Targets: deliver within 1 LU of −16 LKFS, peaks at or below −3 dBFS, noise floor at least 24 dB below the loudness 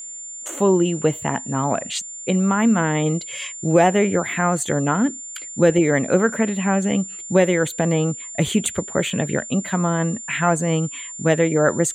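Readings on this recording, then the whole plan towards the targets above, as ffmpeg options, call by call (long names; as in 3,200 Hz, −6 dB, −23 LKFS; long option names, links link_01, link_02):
interfering tone 7,200 Hz; level of the tone −32 dBFS; integrated loudness −20.5 LKFS; sample peak −4.0 dBFS; target loudness −16.0 LKFS
→ -af "bandreject=frequency=7200:width=30"
-af "volume=4.5dB,alimiter=limit=-3dB:level=0:latency=1"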